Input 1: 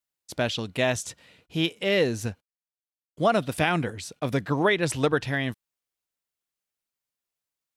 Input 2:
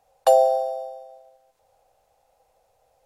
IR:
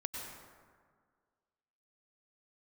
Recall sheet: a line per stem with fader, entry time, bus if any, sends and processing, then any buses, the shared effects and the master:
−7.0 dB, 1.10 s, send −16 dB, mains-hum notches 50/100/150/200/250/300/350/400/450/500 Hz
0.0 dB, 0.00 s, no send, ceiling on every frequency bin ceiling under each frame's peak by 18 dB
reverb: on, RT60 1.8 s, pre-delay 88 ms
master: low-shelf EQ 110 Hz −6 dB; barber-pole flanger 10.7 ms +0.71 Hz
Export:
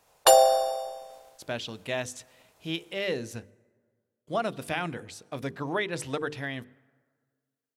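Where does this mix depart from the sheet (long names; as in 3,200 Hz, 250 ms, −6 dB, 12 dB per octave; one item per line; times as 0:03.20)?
stem 1: send −16 dB → −23.5 dB
master: missing barber-pole flanger 10.7 ms +0.71 Hz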